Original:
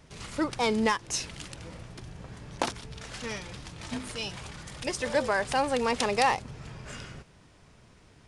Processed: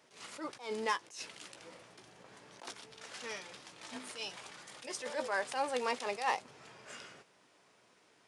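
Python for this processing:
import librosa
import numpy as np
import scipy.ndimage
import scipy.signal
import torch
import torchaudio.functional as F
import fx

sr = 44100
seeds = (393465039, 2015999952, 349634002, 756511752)

y = scipy.signal.sosfilt(scipy.signal.butter(2, 370.0, 'highpass', fs=sr, output='sos'), x)
y = fx.doubler(y, sr, ms=16.0, db=-12)
y = fx.attack_slew(y, sr, db_per_s=140.0)
y = y * 10.0 ** (-5.5 / 20.0)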